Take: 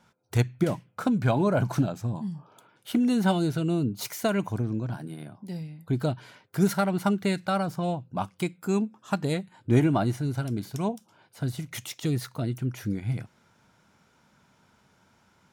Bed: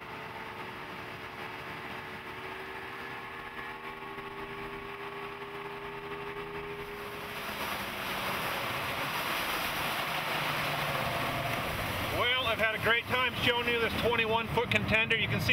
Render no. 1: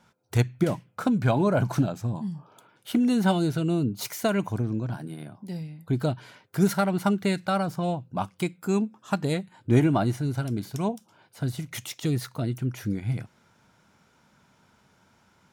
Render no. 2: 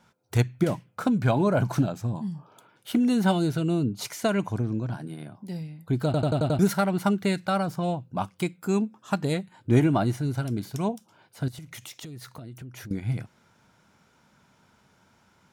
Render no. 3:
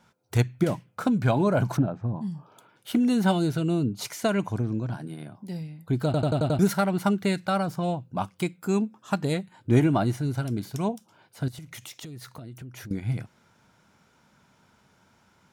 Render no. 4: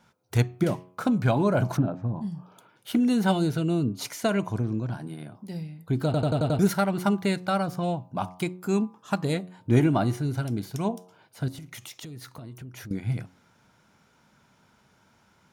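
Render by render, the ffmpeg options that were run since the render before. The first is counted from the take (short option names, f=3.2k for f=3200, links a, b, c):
-af "volume=1dB"
-filter_complex "[0:a]asettb=1/sr,asplit=3[a][b][c];[a]atrim=end=3.784[d];[b]atrim=start=3.78:end=5.36,asetpts=PTS-STARTPTS,afade=t=in:d=0.004:c=qsin,afade=t=out:st=1.576:d=0.004:c=qsin,lowpass=11k[e];[c]atrim=start=5.356[f];[d][e]acrossfade=d=0.004:c1=hsin:c2=qsin[g];[g][f]acrossfade=d=0.004:c1=qsin:c2=hsin,asettb=1/sr,asplit=3[h][i][j];[h]atrim=end=11.484[k];[i]atrim=start=11.48:end=12.91,asetpts=PTS-STARTPTS,afade=t=in:d=0.004:c=qsin,afade=t=out:st=1.426:d=0.004:c=qsin,acompressor=threshold=-37dB:ratio=12:attack=3.2:release=140:knee=1:detection=peak[l];[j]atrim=start=12.906[m];[k][l]acrossfade=d=0.004:c1=hsin:c2=qsin[n];[n][m]acrossfade=d=0.004:c1=qsin:c2=hsin,asplit=7[o][p][q][r][s][t][u];[o]atrim=end=6.142[v];[p]atrim=start=6.048:end=6.142[w];[q]atrim=start=6.048:end=6.142[x];[r]atrim=start=6.048:end=6.142[y];[s]atrim=start=6.048:end=6.142[z];[t]atrim=start=6.048:end=6.142[aa];[u]atrim=start=6.588[ab];[v][w]acrossfade=d=0.004:c1=hsin:c2=hsin[ac];[ac][x]acrossfade=d=0.004:c1=hsin:c2=hsin[ad];[ad][y]acrossfade=d=0.004:c1=hsin:c2=hsin[ae];[ae][z]acrossfade=d=0.004:c1=hsin:c2=hsin[af];[af][aa]acrossfade=d=0.004:c1=hsin:c2=hsin[ag];[ag][ab]acrossfade=d=0.004:c1=hsin:c2=hsin"
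-filter_complex "[0:a]asplit=3[a][b][c];[a]afade=t=out:st=1.76:d=0.02[d];[b]lowpass=1.5k,afade=t=in:st=1.76:d=0.02,afade=t=out:st=2.2:d=0.02[e];[c]afade=t=in:st=2.2:d=0.02[f];[d][e][f]amix=inputs=3:normalize=0"
-af "bandreject=f=7.7k:w=18,bandreject=f=90.99:t=h:w=4,bandreject=f=181.98:t=h:w=4,bandreject=f=272.97:t=h:w=4,bandreject=f=363.96:t=h:w=4,bandreject=f=454.95:t=h:w=4,bandreject=f=545.94:t=h:w=4,bandreject=f=636.93:t=h:w=4,bandreject=f=727.92:t=h:w=4,bandreject=f=818.91:t=h:w=4,bandreject=f=909.9:t=h:w=4,bandreject=f=1.00089k:t=h:w=4,bandreject=f=1.09188k:t=h:w=4,bandreject=f=1.18287k:t=h:w=4,bandreject=f=1.27386k:t=h:w=4"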